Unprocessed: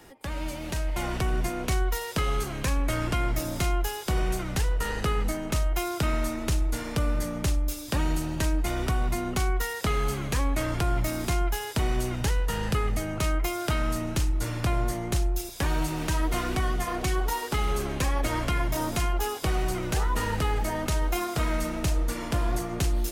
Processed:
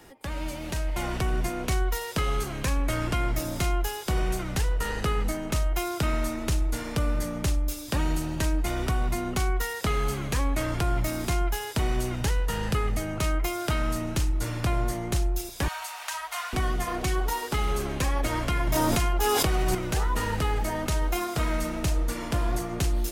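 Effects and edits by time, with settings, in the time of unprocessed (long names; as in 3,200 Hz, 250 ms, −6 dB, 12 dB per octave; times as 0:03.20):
0:15.68–0:16.53: inverse Chebyshev high-pass filter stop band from 390 Hz
0:18.67–0:19.75: envelope flattener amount 100%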